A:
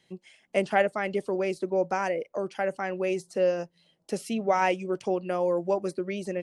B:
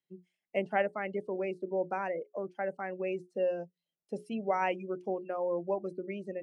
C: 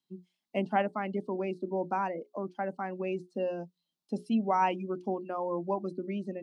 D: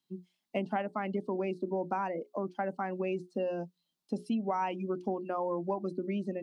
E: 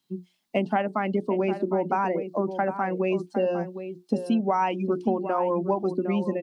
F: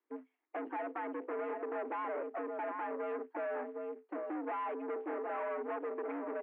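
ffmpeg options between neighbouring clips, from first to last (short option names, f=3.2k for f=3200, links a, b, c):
-af "bandreject=f=60:t=h:w=6,bandreject=f=120:t=h:w=6,bandreject=f=180:t=h:w=6,bandreject=f=240:t=h:w=6,bandreject=f=300:t=h:w=6,bandreject=f=360:t=h:w=6,bandreject=f=420:t=h:w=6,afftdn=nr=21:nf=-35,volume=-6dB"
-af "equalizer=f=250:t=o:w=1:g=11,equalizer=f=500:t=o:w=1:g=-7,equalizer=f=1k:t=o:w=1:g=9,equalizer=f=2k:t=o:w=1:g=-8,equalizer=f=4k:t=o:w=1:g=11"
-af "acompressor=threshold=-31dB:ratio=6,volume=2.5dB"
-filter_complex "[0:a]asplit=2[a][b];[b]adelay=758,volume=-10dB,highshelf=f=4k:g=-17.1[c];[a][c]amix=inputs=2:normalize=0,volume=8dB"
-af "acrusher=bits=4:mode=log:mix=0:aa=0.000001,aeval=exprs='(tanh(50.1*val(0)+0.6)-tanh(0.6))/50.1':c=same,highpass=f=210:t=q:w=0.5412,highpass=f=210:t=q:w=1.307,lowpass=f=2.1k:t=q:w=0.5176,lowpass=f=2.1k:t=q:w=0.7071,lowpass=f=2.1k:t=q:w=1.932,afreqshift=81,volume=-1.5dB"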